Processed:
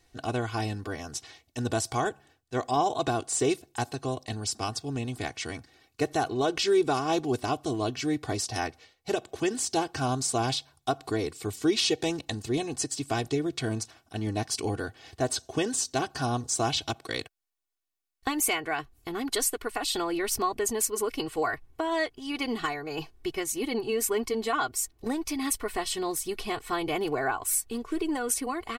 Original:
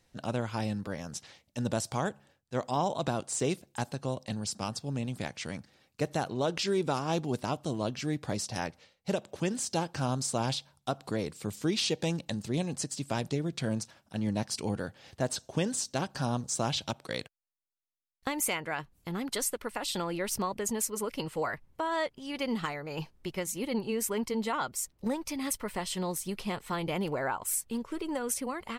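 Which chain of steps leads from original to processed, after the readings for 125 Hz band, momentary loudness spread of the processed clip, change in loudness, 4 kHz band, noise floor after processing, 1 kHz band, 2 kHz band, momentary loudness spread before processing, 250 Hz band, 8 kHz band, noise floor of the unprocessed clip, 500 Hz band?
0.0 dB, 8 LU, +3.5 dB, +4.5 dB, -70 dBFS, +4.5 dB, +4.5 dB, 7 LU, +2.5 dB, +4.5 dB, -74 dBFS, +4.0 dB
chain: comb 2.7 ms, depth 82%; trim +2 dB

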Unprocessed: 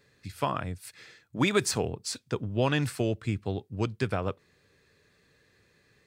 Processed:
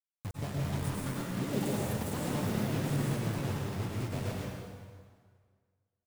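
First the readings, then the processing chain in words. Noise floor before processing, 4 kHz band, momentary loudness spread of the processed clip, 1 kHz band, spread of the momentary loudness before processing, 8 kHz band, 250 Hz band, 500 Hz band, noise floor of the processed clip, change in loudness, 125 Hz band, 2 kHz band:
-67 dBFS, -8.0 dB, 10 LU, -6.0 dB, 15 LU, -6.5 dB, -2.0 dB, -7.0 dB, under -85 dBFS, -4.5 dB, -0.5 dB, -7.5 dB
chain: elliptic band-stop 720–7700 Hz; peaking EQ 570 Hz -3.5 dB 0.94 oct; delay 171 ms -12.5 dB; reverb removal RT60 1.7 s; bass shelf 210 Hz +12 dB; ever faster or slower copies 424 ms, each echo +6 st, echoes 2; de-esser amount 75%; in parallel at 0 dB: peak limiter -17 dBFS, peak gain reduction 10 dB; on the sum: compression 2.5:1, threshold -40 dBFS, peak gain reduction 18.5 dB; waveshaping leveller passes 1; word length cut 6-bit, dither none; plate-style reverb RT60 1.8 s, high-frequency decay 0.85×, pre-delay 90 ms, DRR -3.5 dB; trim -6 dB

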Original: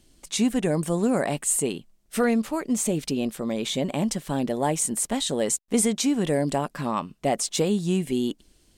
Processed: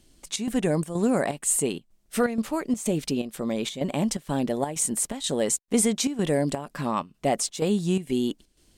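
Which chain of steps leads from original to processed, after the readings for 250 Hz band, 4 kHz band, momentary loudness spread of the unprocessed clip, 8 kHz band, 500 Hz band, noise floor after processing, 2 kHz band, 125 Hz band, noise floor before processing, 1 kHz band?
-1.5 dB, -2.0 dB, 6 LU, -0.5 dB, -0.5 dB, -65 dBFS, -1.0 dB, -1.0 dB, -62 dBFS, -1.5 dB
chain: square tremolo 2.1 Hz, depth 65%, duty 75%

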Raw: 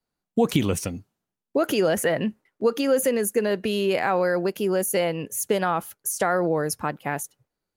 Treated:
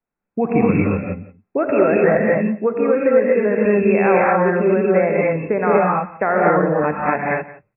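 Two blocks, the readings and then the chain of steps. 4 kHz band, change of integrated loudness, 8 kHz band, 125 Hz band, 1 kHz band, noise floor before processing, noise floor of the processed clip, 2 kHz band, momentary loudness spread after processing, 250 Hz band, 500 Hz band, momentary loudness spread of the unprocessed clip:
under -40 dB, +7.0 dB, under -40 dB, +7.5 dB, +8.5 dB, under -85 dBFS, -81 dBFS, +8.0 dB, 9 LU, +7.5 dB, +8.0 dB, 8 LU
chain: peaking EQ 80 Hz -4 dB 1.9 oct; gated-style reverb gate 270 ms rising, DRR -4 dB; level rider; brick-wall FIR low-pass 2.7 kHz; delay 173 ms -18.5 dB; trim -2 dB

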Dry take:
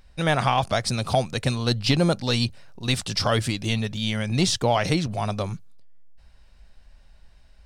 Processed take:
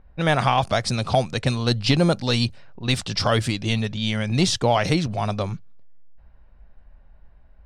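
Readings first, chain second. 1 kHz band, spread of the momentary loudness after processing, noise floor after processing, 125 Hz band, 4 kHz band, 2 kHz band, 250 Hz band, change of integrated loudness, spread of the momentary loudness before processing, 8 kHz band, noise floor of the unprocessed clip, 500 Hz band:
+2.0 dB, 7 LU, -51 dBFS, +2.0 dB, +1.0 dB, +1.5 dB, +2.0 dB, +1.5 dB, 7 LU, -0.5 dB, -53 dBFS, +2.0 dB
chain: level-controlled noise filter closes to 1.2 kHz, open at -20 dBFS; treble shelf 8.9 kHz -6 dB; trim +2 dB

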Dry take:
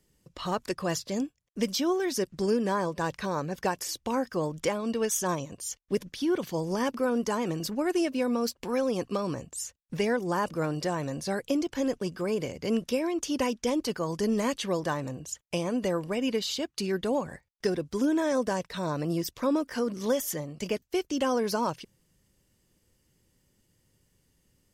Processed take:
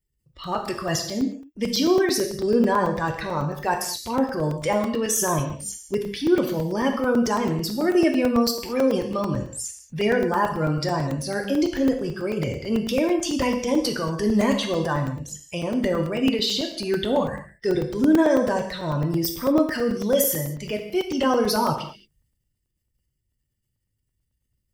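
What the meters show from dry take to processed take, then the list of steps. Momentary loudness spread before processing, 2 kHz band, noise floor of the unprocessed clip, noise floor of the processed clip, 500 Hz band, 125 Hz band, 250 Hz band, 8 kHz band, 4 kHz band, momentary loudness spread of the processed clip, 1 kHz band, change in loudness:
6 LU, +6.5 dB, -72 dBFS, -76 dBFS, +6.0 dB, +8.0 dB, +7.0 dB, +6.0 dB, +7.5 dB, 9 LU, +6.5 dB, +6.5 dB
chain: expander on every frequency bin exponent 1.5; transient shaper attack -5 dB, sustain +7 dB; peaking EQ 6.7 kHz -4.5 dB 0.33 oct; gated-style reverb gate 250 ms falling, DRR 2.5 dB; crackling interface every 0.11 s, samples 128, zero, from 0.33 s; trim +8.5 dB

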